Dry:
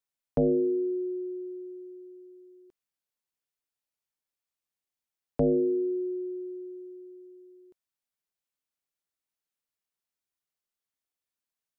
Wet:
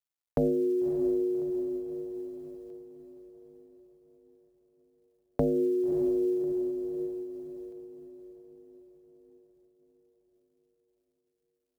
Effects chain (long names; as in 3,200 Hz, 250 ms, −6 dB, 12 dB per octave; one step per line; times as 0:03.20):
0:05.92–0:06.44: parametric band 110 Hz +13 dB 2.3 octaves
downward compressor 3 to 1, threshold −29 dBFS, peak gain reduction 6 dB
log-companded quantiser 8 bits
feedback delay with all-pass diffusion 602 ms, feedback 52%, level −9 dB
amplitude modulation by smooth noise, depth 50%
level +5.5 dB